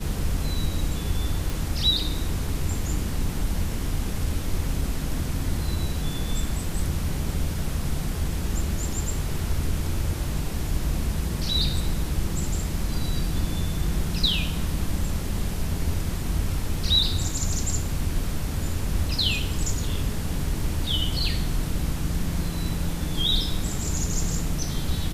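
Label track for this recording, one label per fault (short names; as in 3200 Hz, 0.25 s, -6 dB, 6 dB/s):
1.500000	1.500000	pop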